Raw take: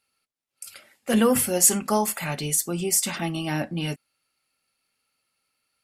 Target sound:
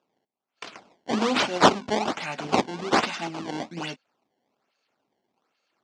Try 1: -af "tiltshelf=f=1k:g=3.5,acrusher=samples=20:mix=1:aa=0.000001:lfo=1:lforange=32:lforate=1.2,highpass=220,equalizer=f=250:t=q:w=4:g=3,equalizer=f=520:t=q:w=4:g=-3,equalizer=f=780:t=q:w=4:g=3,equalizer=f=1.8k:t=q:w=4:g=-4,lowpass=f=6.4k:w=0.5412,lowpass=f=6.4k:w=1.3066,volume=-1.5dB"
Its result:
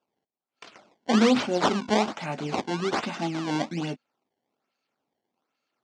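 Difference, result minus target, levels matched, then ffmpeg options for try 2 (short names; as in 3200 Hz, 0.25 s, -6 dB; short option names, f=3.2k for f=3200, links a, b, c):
1000 Hz band -3.0 dB
-af "tiltshelf=f=1k:g=-4,acrusher=samples=20:mix=1:aa=0.000001:lfo=1:lforange=32:lforate=1.2,highpass=220,equalizer=f=250:t=q:w=4:g=3,equalizer=f=520:t=q:w=4:g=-3,equalizer=f=780:t=q:w=4:g=3,equalizer=f=1.8k:t=q:w=4:g=-4,lowpass=f=6.4k:w=0.5412,lowpass=f=6.4k:w=1.3066,volume=-1.5dB"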